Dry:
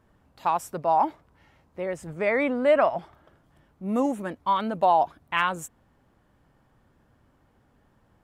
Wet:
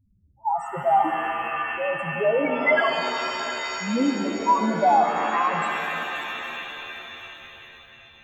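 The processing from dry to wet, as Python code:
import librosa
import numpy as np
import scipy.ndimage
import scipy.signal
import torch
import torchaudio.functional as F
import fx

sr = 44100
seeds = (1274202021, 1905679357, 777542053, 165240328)

y = fx.graphic_eq(x, sr, hz=(250, 500, 1000, 2000, 8000), db=(-5, -11, 6, 11, 7), at=(2.46, 3.95))
y = fx.spec_topn(y, sr, count=2)
y = fx.rev_shimmer(y, sr, seeds[0], rt60_s=3.8, semitones=7, shimmer_db=-2, drr_db=5.0)
y = F.gain(torch.from_numpy(y), 5.5).numpy()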